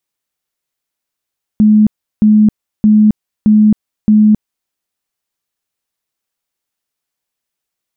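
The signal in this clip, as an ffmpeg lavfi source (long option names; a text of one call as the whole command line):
ffmpeg -f lavfi -i "aevalsrc='0.631*sin(2*PI*213*mod(t,0.62))*lt(mod(t,0.62),57/213)':duration=3.1:sample_rate=44100" out.wav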